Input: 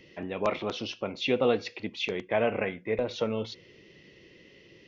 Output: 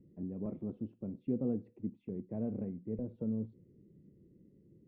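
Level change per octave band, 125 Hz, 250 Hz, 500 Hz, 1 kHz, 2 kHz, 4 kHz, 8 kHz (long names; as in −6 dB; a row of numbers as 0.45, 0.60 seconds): −1.0 dB, −1.5 dB, −15.5 dB, −26.0 dB, below −40 dB, below −40 dB, can't be measured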